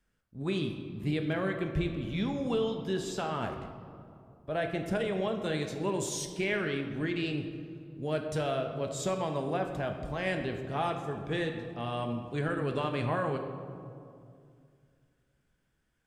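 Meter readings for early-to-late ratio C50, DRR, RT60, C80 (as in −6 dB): 6.5 dB, 4.0 dB, 2.4 s, 8.0 dB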